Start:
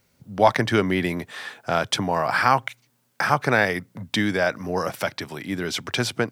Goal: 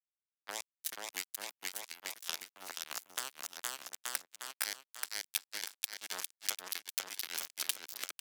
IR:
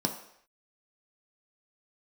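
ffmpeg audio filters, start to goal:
-filter_complex "[0:a]acompressor=threshold=0.0501:ratio=16,tremolo=f=4.4:d=0.98,acrusher=bits=3:mix=0:aa=0.5,aecho=1:1:370|684.5|951.8|1179|1372:0.631|0.398|0.251|0.158|0.1,acrossover=split=400|6600[s0][s1][s2];[s0]acompressor=threshold=0.00501:ratio=4[s3];[s1]acompressor=threshold=0.00501:ratio=4[s4];[s2]acompressor=threshold=0.00158:ratio=4[s5];[s3][s4][s5]amix=inputs=3:normalize=0,atempo=0.77,highpass=f=170:p=1,aderivative,volume=7.08"

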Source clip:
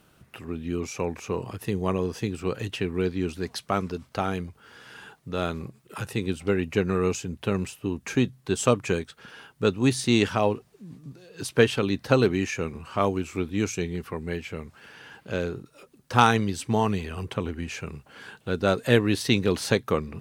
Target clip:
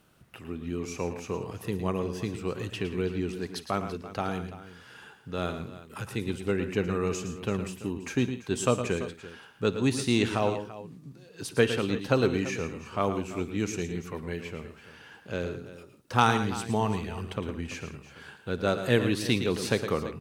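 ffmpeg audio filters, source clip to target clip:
-af "aecho=1:1:56|111|127|169|337:0.106|0.316|0.119|0.112|0.168,volume=0.631"

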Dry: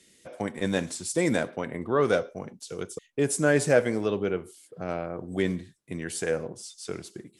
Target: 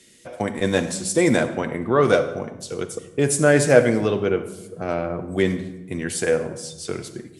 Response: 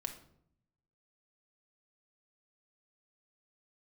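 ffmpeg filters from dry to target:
-filter_complex "[0:a]asplit=2[s0][s1];[1:a]atrim=start_sample=2205,asetrate=23373,aresample=44100[s2];[s1][s2]afir=irnorm=-1:irlink=0,volume=0.944[s3];[s0][s3]amix=inputs=2:normalize=0"

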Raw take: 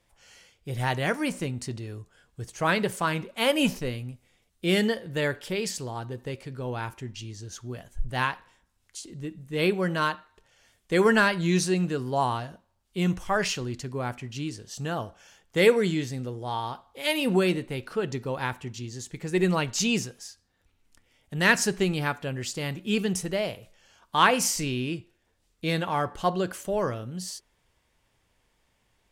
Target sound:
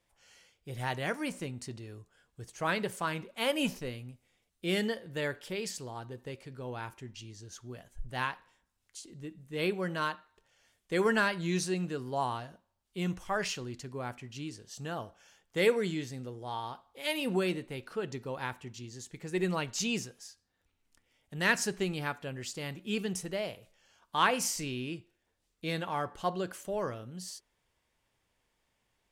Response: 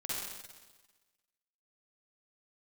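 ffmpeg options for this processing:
-af "lowshelf=f=140:g=-4.5,volume=0.473"

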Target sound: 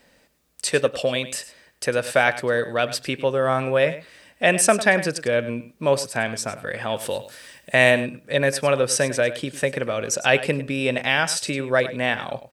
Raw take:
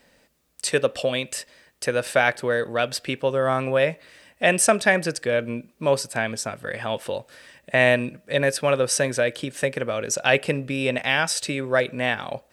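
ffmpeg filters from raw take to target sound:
-filter_complex "[0:a]asettb=1/sr,asplit=3[s0][s1][s2];[s0]atrim=end=6.964[s3];[s1]atrim=start=6.96:end=7.91,asetpts=PTS-STARTPTS,afade=t=in:d=0.004:c=qsin,afade=t=out:st=0.946:d=0.004:c=qsin,highshelf=f=4600:g=10.5[s4];[s2]atrim=start=7.906[s5];[s3][s4]acrossfade=d=0.004:c1=hsin:c2=qsin[s6];[s6][s5]acrossfade=d=0.004:c1=qsin:c2=hsin,asplit=2[s7][s8];[s8]aecho=0:1:101:0.188[s9];[s7][s9]amix=inputs=2:normalize=0,volume=1.12"

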